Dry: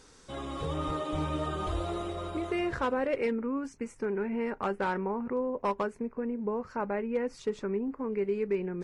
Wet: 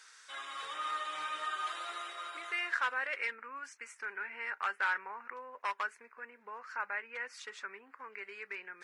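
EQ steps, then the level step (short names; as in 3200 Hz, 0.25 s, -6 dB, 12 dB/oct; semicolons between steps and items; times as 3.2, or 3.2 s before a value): resonant high-pass 1600 Hz, resonance Q 2.2; 0.0 dB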